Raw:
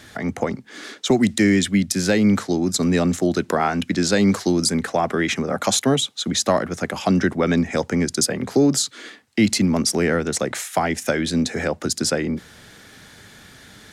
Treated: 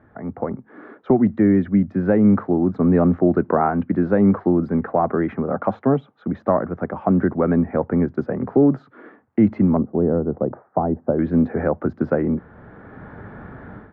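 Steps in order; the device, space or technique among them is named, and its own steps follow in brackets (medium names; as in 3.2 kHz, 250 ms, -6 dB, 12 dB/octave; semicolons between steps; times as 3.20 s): 9.77–11.19 s: Bessel low-pass 670 Hz, order 4; action camera in a waterproof case (low-pass 1.3 kHz 24 dB/octave; level rider gain up to 16.5 dB; trim -5 dB; AAC 128 kbps 44.1 kHz)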